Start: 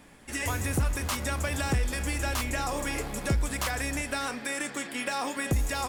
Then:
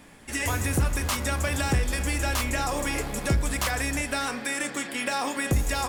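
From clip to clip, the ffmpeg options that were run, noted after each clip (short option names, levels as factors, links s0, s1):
-af "bandreject=f=50.28:t=h:w=4,bandreject=f=100.56:t=h:w=4,bandreject=f=150.84:t=h:w=4,bandreject=f=201.12:t=h:w=4,bandreject=f=251.4:t=h:w=4,bandreject=f=301.68:t=h:w=4,bandreject=f=351.96:t=h:w=4,bandreject=f=402.24:t=h:w=4,bandreject=f=452.52:t=h:w=4,bandreject=f=502.8:t=h:w=4,bandreject=f=553.08:t=h:w=4,bandreject=f=603.36:t=h:w=4,bandreject=f=653.64:t=h:w=4,bandreject=f=703.92:t=h:w=4,bandreject=f=754.2:t=h:w=4,bandreject=f=804.48:t=h:w=4,bandreject=f=854.76:t=h:w=4,bandreject=f=905.04:t=h:w=4,bandreject=f=955.32:t=h:w=4,bandreject=f=1005.6:t=h:w=4,bandreject=f=1055.88:t=h:w=4,bandreject=f=1106.16:t=h:w=4,bandreject=f=1156.44:t=h:w=4,bandreject=f=1206.72:t=h:w=4,bandreject=f=1257:t=h:w=4,bandreject=f=1307.28:t=h:w=4,bandreject=f=1357.56:t=h:w=4,bandreject=f=1407.84:t=h:w=4,bandreject=f=1458.12:t=h:w=4,bandreject=f=1508.4:t=h:w=4,bandreject=f=1558.68:t=h:w=4,bandreject=f=1608.96:t=h:w=4,bandreject=f=1659.24:t=h:w=4,volume=1.5"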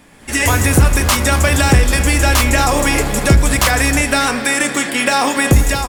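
-af "dynaudnorm=f=100:g=5:m=2.99,aecho=1:1:231:0.168,volume=1.58"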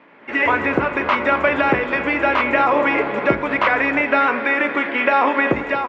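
-af "acrusher=bits=7:mix=0:aa=0.000001,highpass=490,equalizer=f=500:t=q:w=4:g=-4,equalizer=f=760:t=q:w=4:g=-9,equalizer=f=1200:t=q:w=4:g=-5,equalizer=f=1700:t=q:w=4:g=-8,lowpass=f=2000:w=0.5412,lowpass=f=2000:w=1.3066,volume=2.11"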